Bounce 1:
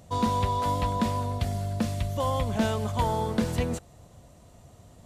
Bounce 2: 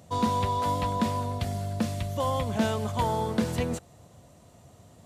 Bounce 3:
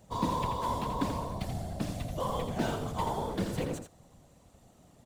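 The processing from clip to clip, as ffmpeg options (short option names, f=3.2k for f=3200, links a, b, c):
-af "highpass=84"
-filter_complex "[0:a]acrossover=split=1500[a][b];[b]acrusher=bits=3:mode=log:mix=0:aa=0.000001[c];[a][c]amix=inputs=2:normalize=0,afftfilt=real='hypot(re,im)*cos(2*PI*random(0))':imag='hypot(re,im)*sin(2*PI*random(1))':win_size=512:overlap=0.75,aecho=1:1:84:0.422"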